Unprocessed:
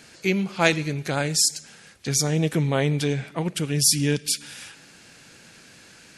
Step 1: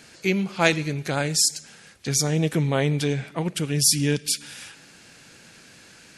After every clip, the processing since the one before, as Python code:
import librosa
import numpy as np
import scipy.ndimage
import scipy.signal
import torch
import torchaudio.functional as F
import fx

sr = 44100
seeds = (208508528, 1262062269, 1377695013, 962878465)

y = x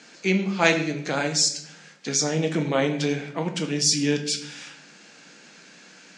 y = scipy.signal.sosfilt(scipy.signal.ellip(3, 1.0, 40, [190.0, 6900.0], 'bandpass', fs=sr, output='sos'), x)
y = fx.room_shoebox(y, sr, seeds[0], volume_m3=120.0, walls='mixed', distance_m=0.5)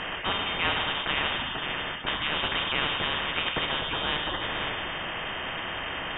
y = x + 10.0 ** (-19.5 / 20.0) * np.pad(x, (int(531 * sr / 1000.0), 0))[:len(x)]
y = fx.freq_invert(y, sr, carrier_hz=3400)
y = fx.spectral_comp(y, sr, ratio=4.0)
y = F.gain(torch.from_numpy(y), -7.5).numpy()